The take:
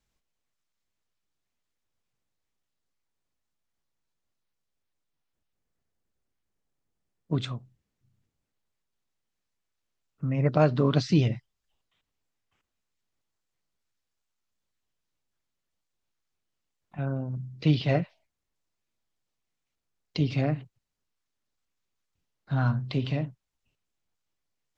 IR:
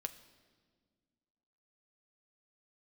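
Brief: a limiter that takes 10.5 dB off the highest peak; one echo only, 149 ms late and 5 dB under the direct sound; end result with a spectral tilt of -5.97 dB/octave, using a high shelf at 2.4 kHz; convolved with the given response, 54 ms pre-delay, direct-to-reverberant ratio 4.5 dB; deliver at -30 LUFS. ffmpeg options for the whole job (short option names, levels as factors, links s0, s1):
-filter_complex "[0:a]highshelf=f=2400:g=7,alimiter=limit=0.126:level=0:latency=1,aecho=1:1:149:0.562,asplit=2[s0][s1];[1:a]atrim=start_sample=2205,adelay=54[s2];[s1][s2]afir=irnorm=-1:irlink=0,volume=0.75[s3];[s0][s3]amix=inputs=2:normalize=0,volume=0.75"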